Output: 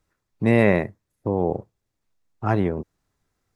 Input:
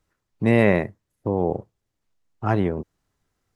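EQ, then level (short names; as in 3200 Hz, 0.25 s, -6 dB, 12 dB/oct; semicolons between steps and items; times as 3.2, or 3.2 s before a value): notch 3000 Hz, Q 17; 0.0 dB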